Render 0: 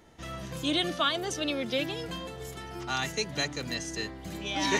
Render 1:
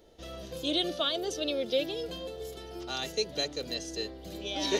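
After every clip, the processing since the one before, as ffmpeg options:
ffmpeg -i in.wav -af "equalizer=frequency=125:width_type=o:width=1:gain=-12,equalizer=frequency=250:width_type=o:width=1:gain=-5,equalizer=frequency=500:width_type=o:width=1:gain=7,equalizer=frequency=1000:width_type=o:width=1:gain=-10,equalizer=frequency=2000:width_type=o:width=1:gain=-10,equalizer=frequency=4000:width_type=o:width=1:gain=4,equalizer=frequency=8000:width_type=o:width=1:gain=-8,volume=1dB" out.wav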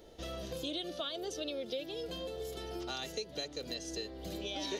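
ffmpeg -i in.wav -af "acompressor=threshold=-41dB:ratio=4,volume=3dB" out.wav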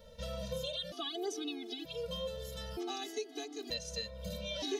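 ffmpeg -i in.wav -af "afftfilt=real='re*gt(sin(2*PI*0.54*pts/sr)*(1-2*mod(floor(b*sr/1024/220),2)),0)':imag='im*gt(sin(2*PI*0.54*pts/sr)*(1-2*mod(floor(b*sr/1024/220),2)),0)':win_size=1024:overlap=0.75,volume=3.5dB" out.wav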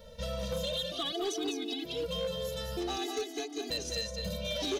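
ffmpeg -i in.wav -filter_complex "[0:a]aecho=1:1:204:0.531,asplit=2[link_01][link_02];[link_02]aeval=exprs='0.0211*(abs(mod(val(0)/0.0211+3,4)-2)-1)':channel_layout=same,volume=-3dB[link_03];[link_01][link_03]amix=inputs=2:normalize=0" out.wav

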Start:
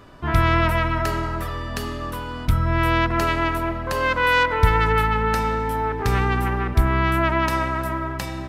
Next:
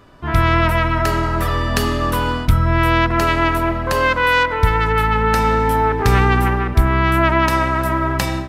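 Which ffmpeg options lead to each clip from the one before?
ffmpeg -i in.wav -af "dynaudnorm=framelen=190:gausssize=3:maxgain=15.5dB,volume=-1dB" out.wav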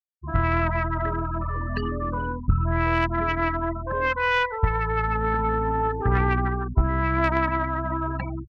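ffmpeg -i in.wav -af "afftfilt=real='re*gte(hypot(re,im),0.251)':imag='im*gte(hypot(re,im),0.251)':win_size=1024:overlap=0.75,aeval=exprs='0.794*(cos(1*acos(clip(val(0)/0.794,-1,1)))-cos(1*PI/2))+0.1*(cos(3*acos(clip(val(0)/0.794,-1,1)))-cos(3*PI/2))+0.02*(cos(5*acos(clip(val(0)/0.794,-1,1)))-cos(5*PI/2))+0.00794*(cos(7*acos(clip(val(0)/0.794,-1,1)))-cos(7*PI/2))':channel_layout=same,volume=-5dB" out.wav

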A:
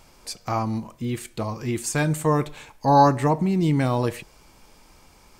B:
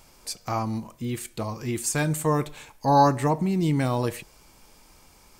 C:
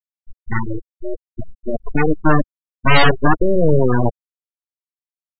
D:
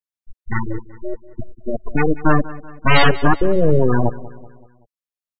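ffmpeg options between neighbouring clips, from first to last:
ffmpeg -i in.wav -af "highshelf=frequency=6700:gain=7,volume=-2.5dB" out.wav
ffmpeg -i in.wav -af "aeval=exprs='0.447*(cos(1*acos(clip(val(0)/0.447,-1,1)))-cos(1*PI/2))+0.178*(cos(3*acos(clip(val(0)/0.447,-1,1)))-cos(3*PI/2))+0.00501*(cos(5*acos(clip(val(0)/0.447,-1,1)))-cos(5*PI/2))+0.2*(cos(8*acos(clip(val(0)/0.447,-1,1)))-cos(8*PI/2))':channel_layout=same,afftfilt=real='re*gte(hypot(re,im),0.251)':imag='im*gte(hypot(re,im),0.251)':win_size=1024:overlap=0.75,volume=5dB" out.wav
ffmpeg -i in.wav -af "aecho=1:1:190|380|570|760:0.126|0.0604|0.029|0.0139,volume=-1dB" out.wav

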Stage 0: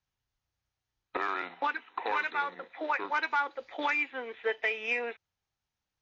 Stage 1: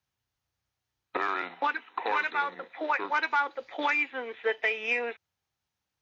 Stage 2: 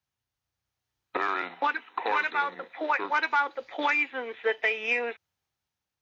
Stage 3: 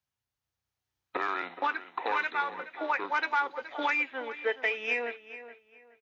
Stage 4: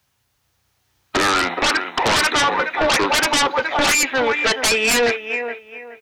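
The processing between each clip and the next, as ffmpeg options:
ffmpeg -i in.wav -af "highpass=66,volume=2.5dB" out.wav
ffmpeg -i in.wav -af "dynaudnorm=framelen=320:gausssize=5:maxgain=4.5dB,volume=-3dB" out.wav
ffmpeg -i in.wav -filter_complex "[0:a]asplit=2[link_01][link_02];[link_02]adelay=422,lowpass=frequency=3000:poles=1,volume=-13dB,asplit=2[link_03][link_04];[link_04]adelay=422,lowpass=frequency=3000:poles=1,volume=0.28,asplit=2[link_05][link_06];[link_06]adelay=422,lowpass=frequency=3000:poles=1,volume=0.28[link_07];[link_01][link_03][link_05][link_07]amix=inputs=4:normalize=0,volume=-3dB" out.wav
ffmpeg -i in.wav -af "aeval=exprs='0.133*sin(PI/2*4.47*val(0)/0.133)':channel_layout=same,volume=4.5dB" out.wav

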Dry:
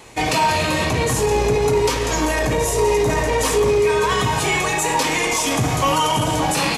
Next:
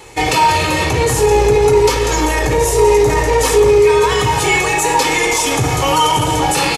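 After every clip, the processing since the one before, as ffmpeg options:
ffmpeg -i in.wav -af "aecho=1:1:2.3:0.52,volume=3.5dB" out.wav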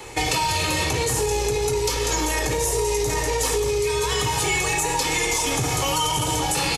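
ffmpeg -i in.wav -filter_complex "[0:a]acrossover=split=140|3400[link_01][link_02][link_03];[link_01]acompressor=threshold=-30dB:ratio=4[link_04];[link_02]acompressor=threshold=-25dB:ratio=4[link_05];[link_03]acompressor=threshold=-24dB:ratio=4[link_06];[link_04][link_05][link_06]amix=inputs=3:normalize=0" out.wav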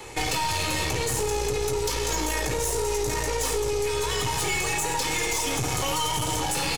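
ffmpeg -i in.wav -af "aeval=exprs='(tanh(11.2*val(0)+0.55)-tanh(0.55))/11.2':channel_layout=same" out.wav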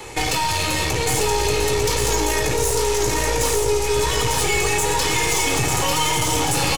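ffmpeg -i in.wav -af "aecho=1:1:898:0.631,volume=5dB" out.wav

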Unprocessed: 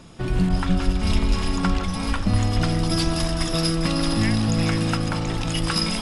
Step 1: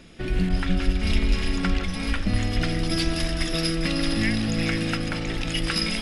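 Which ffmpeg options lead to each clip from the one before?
ffmpeg -i in.wav -af "equalizer=frequency=125:width_type=o:width=1:gain=-8,equalizer=frequency=1000:width_type=o:width=1:gain=-11,equalizer=frequency=2000:width_type=o:width=1:gain=6,equalizer=frequency=8000:width_type=o:width=1:gain=-6" out.wav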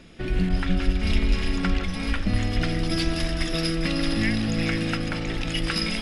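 ffmpeg -i in.wav -af "highshelf=frequency=6400:gain=-5" out.wav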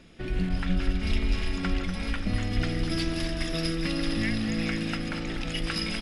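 ffmpeg -i in.wav -af "aecho=1:1:243:0.335,volume=-4.5dB" out.wav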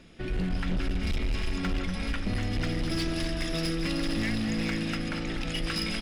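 ffmpeg -i in.wav -af "volume=24dB,asoftclip=hard,volume=-24dB" out.wav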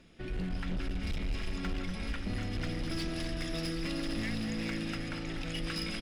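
ffmpeg -i in.wav -af "aecho=1:1:771:0.299,volume=-6dB" out.wav

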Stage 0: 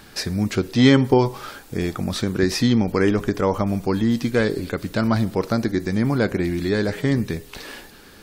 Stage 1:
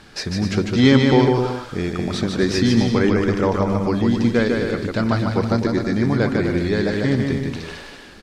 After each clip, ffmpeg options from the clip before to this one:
ffmpeg -i in.wav -filter_complex "[0:a]lowpass=6700,asplit=2[link_01][link_02];[link_02]aecho=0:1:150|255|328.5|380|416:0.631|0.398|0.251|0.158|0.1[link_03];[link_01][link_03]amix=inputs=2:normalize=0" out.wav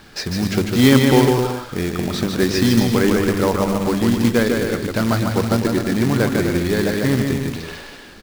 ffmpeg -i in.wav -af "bandreject=frequency=50.32:width_type=h:width=4,bandreject=frequency=100.64:width_type=h:width=4,acrusher=bits=3:mode=log:mix=0:aa=0.000001,volume=1dB" out.wav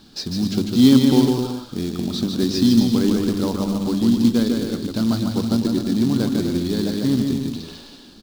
ffmpeg -i in.wav -af "equalizer=frequency=250:width_type=o:width=1:gain=10,equalizer=frequency=500:width_type=o:width=1:gain=-4,equalizer=frequency=2000:width_type=o:width=1:gain=-12,equalizer=frequency=4000:width_type=o:width=1:gain=10,volume=-7dB" out.wav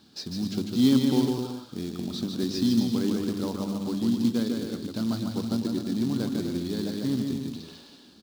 ffmpeg -i in.wav -af "highpass=81,volume=-8dB" out.wav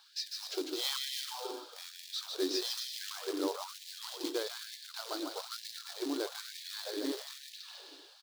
ffmpeg -i in.wav -af "afftfilt=real='re*gte(b*sr/1024,270*pow(1700/270,0.5+0.5*sin(2*PI*1.1*pts/sr)))':imag='im*gte(b*sr/1024,270*pow(1700/270,0.5+0.5*sin(2*PI*1.1*pts/sr)))':win_size=1024:overlap=0.75" out.wav

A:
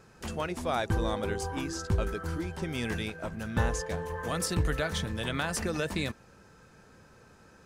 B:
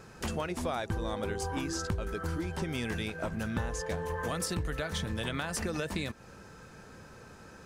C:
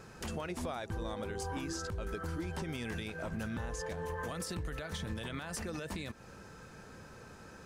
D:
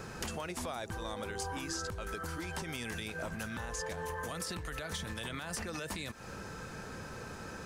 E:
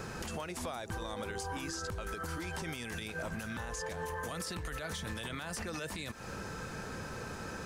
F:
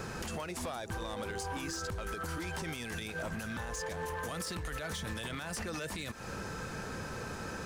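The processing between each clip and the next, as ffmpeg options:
ffmpeg -i in.wav -af "acompressor=threshold=-36dB:ratio=6,volume=5.5dB" out.wav
ffmpeg -i in.wav -af "alimiter=level_in=4.5dB:limit=-24dB:level=0:latency=1:release=100,volume=-4.5dB,volume=-1dB" out.wav
ffmpeg -i in.wav -filter_complex "[0:a]acrossover=split=710|5300[link_01][link_02][link_03];[link_01]acompressor=threshold=-50dB:ratio=4[link_04];[link_02]acompressor=threshold=-49dB:ratio=4[link_05];[link_03]acompressor=threshold=-50dB:ratio=4[link_06];[link_04][link_05][link_06]amix=inputs=3:normalize=0,volume=8dB" out.wav
ffmpeg -i in.wav -af "alimiter=level_in=8dB:limit=-24dB:level=0:latency=1:release=72,volume=-8dB,volume=2.5dB" out.wav
ffmpeg -i in.wav -af "asoftclip=type=hard:threshold=-34dB,volume=1.5dB" out.wav

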